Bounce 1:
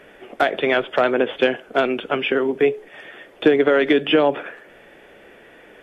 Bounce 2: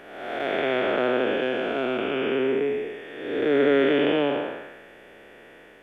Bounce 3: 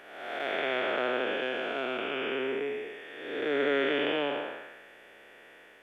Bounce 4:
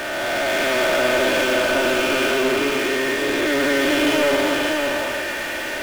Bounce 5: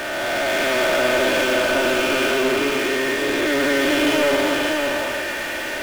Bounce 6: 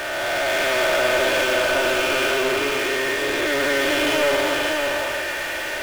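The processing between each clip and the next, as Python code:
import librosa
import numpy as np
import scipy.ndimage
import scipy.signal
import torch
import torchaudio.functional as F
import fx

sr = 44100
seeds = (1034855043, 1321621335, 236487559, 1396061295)

y1 = fx.spec_blur(x, sr, span_ms=400.0)
y2 = fx.low_shelf(y1, sr, hz=480.0, db=-11.5)
y2 = y2 * librosa.db_to_amplitude(-2.0)
y3 = y2 + 0.95 * np.pad(y2, (int(3.3 * sr / 1000.0), 0))[:len(y2)]
y3 = fx.power_curve(y3, sr, exponent=0.35)
y3 = y3 + 10.0 ** (-3.0 / 20.0) * np.pad(y3, (int(565 * sr / 1000.0), 0))[:len(y3)]
y4 = y3
y5 = fx.peak_eq(y4, sr, hz=240.0, db=-9.5, octaves=0.83)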